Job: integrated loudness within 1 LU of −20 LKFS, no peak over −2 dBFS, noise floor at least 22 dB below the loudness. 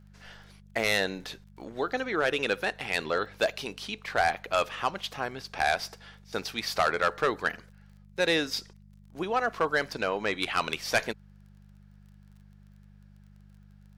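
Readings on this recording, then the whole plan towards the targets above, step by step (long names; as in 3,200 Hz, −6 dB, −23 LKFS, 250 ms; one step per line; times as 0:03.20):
crackle rate 27 per second; mains hum 50 Hz; hum harmonics up to 200 Hz; level of the hum −51 dBFS; integrated loudness −29.5 LKFS; sample peak −14.5 dBFS; target loudness −20.0 LKFS
→ click removal
hum removal 50 Hz, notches 4
level +9.5 dB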